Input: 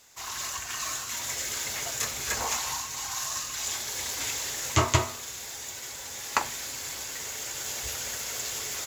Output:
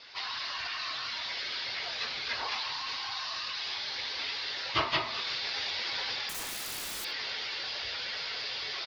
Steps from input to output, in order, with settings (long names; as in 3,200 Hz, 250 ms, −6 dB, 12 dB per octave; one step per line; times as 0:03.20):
random phases in long frames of 50 ms
Butterworth low-pass 4,900 Hz 72 dB per octave
spectral tilt +3 dB per octave
in parallel at +1.5 dB: compressor whose output falls as the input rises −41 dBFS, ratio −0.5
0:06.29–0:07.05: on the sum: wrap-around overflow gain 27.5 dB
on a send: single-tap delay 72 ms −22.5 dB
on the sum: level −4.5 dB